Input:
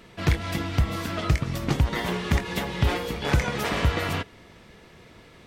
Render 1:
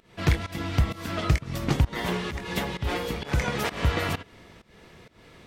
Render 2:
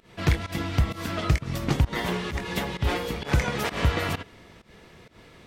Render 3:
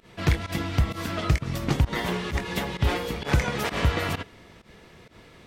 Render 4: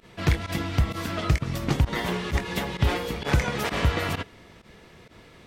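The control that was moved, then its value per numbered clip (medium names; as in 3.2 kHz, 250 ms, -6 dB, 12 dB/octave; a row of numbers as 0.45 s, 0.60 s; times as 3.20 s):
volume shaper, release: 275 ms, 165 ms, 108 ms, 70 ms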